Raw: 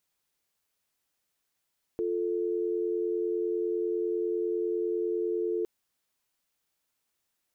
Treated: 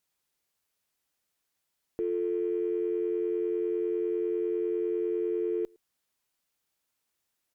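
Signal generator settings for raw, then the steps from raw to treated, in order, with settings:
call progress tone dial tone, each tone -29.5 dBFS 3.66 s
added harmonics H 7 -38 dB, 8 -37 dB, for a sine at -22.5 dBFS; outdoor echo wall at 19 m, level -29 dB

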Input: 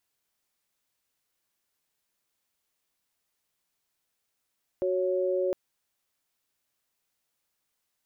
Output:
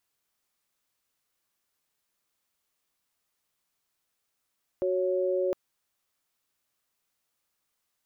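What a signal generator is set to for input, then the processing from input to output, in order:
chord F#4/C#5 sine, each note -27 dBFS 0.71 s
bell 1200 Hz +3.5 dB 0.3 oct

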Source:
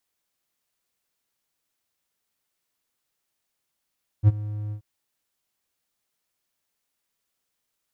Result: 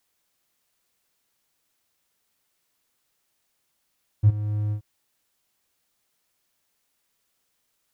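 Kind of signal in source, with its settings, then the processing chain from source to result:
ADSR triangle 105 Hz, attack 49 ms, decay 29 ms, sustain -18.5 dB, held 0.49 s, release 91 ms -7.5 dBFS
in parallel at 0 dB: compressor, threshold -28 dBFS; on the sum: soft clip -8.5 dBFS

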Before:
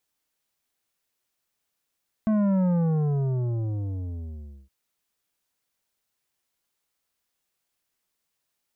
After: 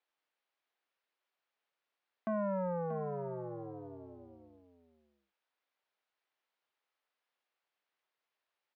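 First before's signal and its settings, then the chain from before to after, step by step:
sub drop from 220 Hz, over 2.42 s, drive 10 dB, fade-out 2.06 s, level -20.5 dB
HPF 490 Hz 12 dB/oct; air absorption 290 m; echo 0.634 s -11.5 dB

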